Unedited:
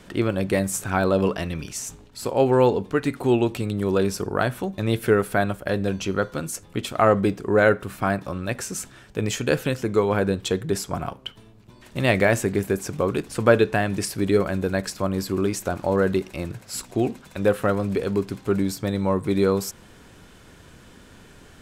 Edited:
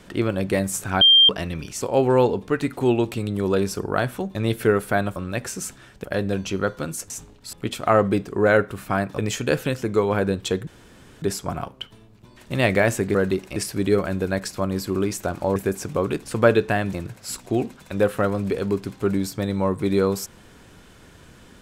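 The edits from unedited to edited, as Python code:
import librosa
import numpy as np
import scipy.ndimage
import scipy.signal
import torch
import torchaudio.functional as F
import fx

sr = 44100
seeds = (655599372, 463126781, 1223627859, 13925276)

y = fx.edit(x, sr, fx.bleep(start_s=1.01, length_s=0.28, hz=3180.0, db=-9.5),
    fx.move(start_s=1.81, length_s=0.43, to_s=6.65),
    fx.move(start_s=8.3, length_s=0.88, to_s=5.59),
    fx.insert_room_tone(at_s=10.67, length_s=0.55),
    fx.swap(start_s=12.6, length_s=1.38, other_s=15.98, other_length_s=0.41), tone=tone)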